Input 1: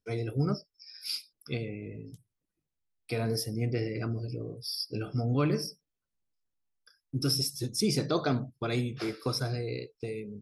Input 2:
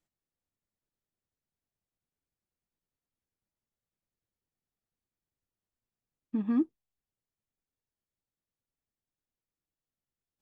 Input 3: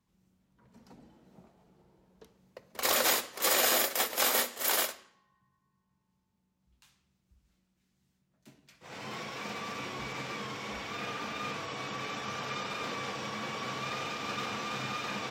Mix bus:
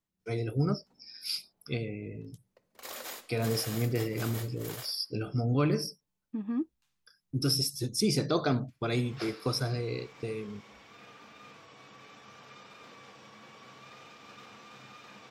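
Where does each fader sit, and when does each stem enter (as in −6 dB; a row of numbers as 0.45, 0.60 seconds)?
+0.5, −4.5, −15.0 decibels; 0.20, 0.00, 0.00 seconds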